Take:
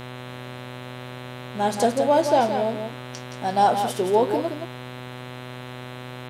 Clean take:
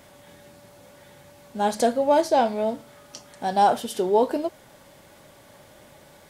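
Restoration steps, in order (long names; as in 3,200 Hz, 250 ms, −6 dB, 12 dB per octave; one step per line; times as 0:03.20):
hum removal 125.4 Hz, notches 33
echo removal 171 ms −7.5 dB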